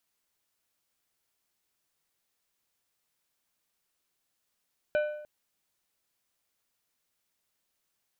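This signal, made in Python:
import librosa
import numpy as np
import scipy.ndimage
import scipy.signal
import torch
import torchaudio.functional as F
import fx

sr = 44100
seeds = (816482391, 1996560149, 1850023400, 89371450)

y = fx.strike_metal(sr, length_s=0.3, level_db=-22.0, body='plate', hz=600.0, decay_s=0.81, tilt_db=8.5, modes=5)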